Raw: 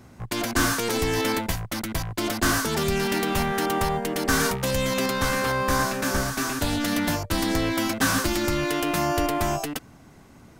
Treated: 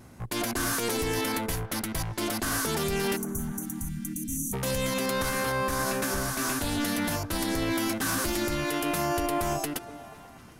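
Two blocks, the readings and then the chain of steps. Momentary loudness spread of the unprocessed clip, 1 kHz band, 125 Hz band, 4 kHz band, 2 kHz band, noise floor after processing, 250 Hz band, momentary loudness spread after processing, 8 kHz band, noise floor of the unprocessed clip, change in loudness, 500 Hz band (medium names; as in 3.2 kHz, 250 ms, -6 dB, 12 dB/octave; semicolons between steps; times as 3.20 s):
6 LU, -5.5 dB, -4.5 dB, -5.0 dB, -5.5 dB, -48 dBFS, -4.5 dB, 7 LU, -2.0 dB, -50 dBFS, -4.5 dB, -4.5 dB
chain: peak limiter -19 dBFS, peak gain reduction 9.5 dB; peaking EQ 11 kHz +8 dB 0.57 oct; vibrato 0.41 Hz 6.3 cents; spectral selection erased 3.16–4.53 s, 320–5700 Hz; on a send: repeats whose band climbs or falls 242 ms, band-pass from 390 Hz, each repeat 0.7 oct, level -10 dB; on the sum: trim -1.5 dB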